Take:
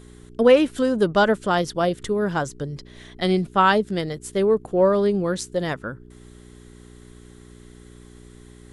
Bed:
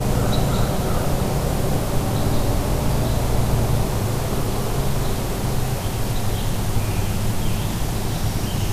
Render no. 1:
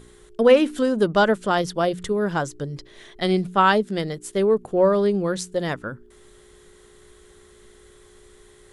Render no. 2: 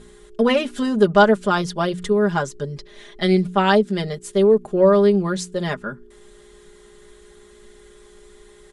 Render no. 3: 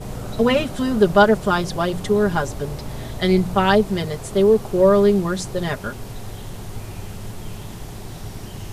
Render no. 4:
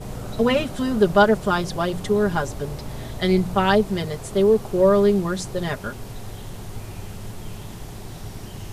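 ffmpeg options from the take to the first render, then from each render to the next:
-af "bandreject=f=60:t=h:w=4,bandreject=f=120:t=h:w=4,bandreject=f=180:t=h:w=4,bandreject=f=240:t=h:w=4,bandreject=f=300:t=h:w=4"
-af "lowpass=9900,aecho=1:1:4.9:0.81"
-filter_complex "[1:a]volume=0.282[s0];[0:a][s0]amix=inputs=2:normalize=0"
-af "volume=0.794"

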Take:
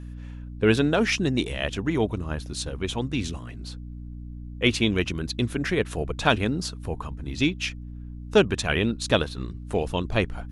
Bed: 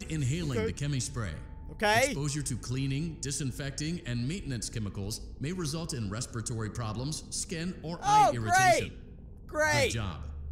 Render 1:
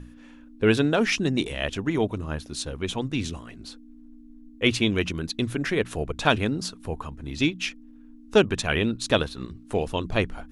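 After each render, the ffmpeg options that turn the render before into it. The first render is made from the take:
-af "bandreject=f=60:t=h:w=6,bandreject=f=120:t=h:w=6,bandreject=f=180:t=h:w=6"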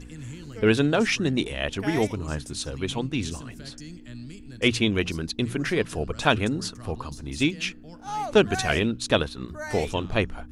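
-filter_complex "[1:a]volume=0.376[s0];[0:a][s0]amix=inputs=2:normalize=0"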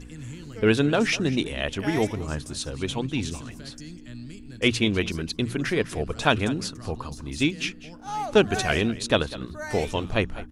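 -af "aecho=1:1:200:0.133"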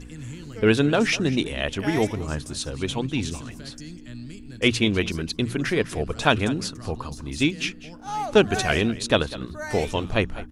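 -af "volume=1.19"

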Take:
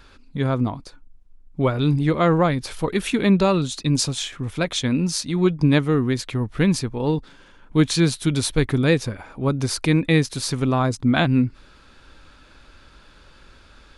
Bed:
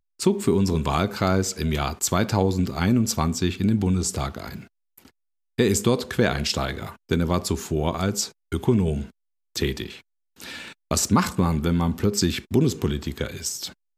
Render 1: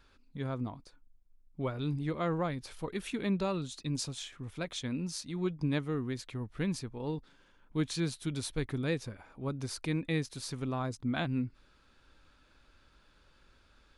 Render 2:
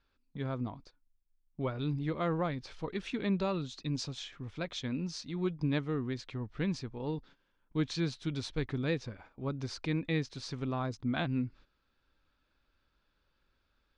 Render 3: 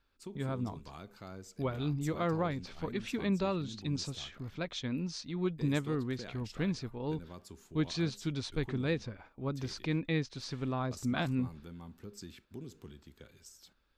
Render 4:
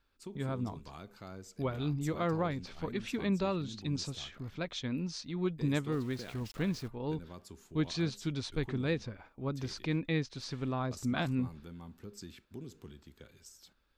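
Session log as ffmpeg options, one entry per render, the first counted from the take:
-af "volume=0.188"
-af "agate=range=0.251:threshold=0.002:ratio=16:detection=peak,lowpass=f=5900:w=0.5412,lowpass=f=5900:w=1.3066"
-filter_complex "[1:a]volume=0.0501[s0];[0:a][s0]amix=inputs=2:normalize=0"
-filter_complex "[0:a]asettb=1/sr,asplit=3[s0][s1][s2];[s0]atrim=end=5.924[s3];[s1]atrim=start=5.92:end=6.88,asetpts=PTS-STARTPTS,afade=t=in:d=0.004:c=qsin,afade=t=out:st=0.956:d=0.004:c=qsin,aeval=exprs='val(0)*gte(abs(val(0)),0.00355)':c=same[s4];[s2]atrim=start=6.876[s5];[s3][s4]acrossfade=d=0.004:c1=hsin:c2=qsin[s6];[s6][s5]acrossfade=d=0.004:c1=qsin:c2=hsin"

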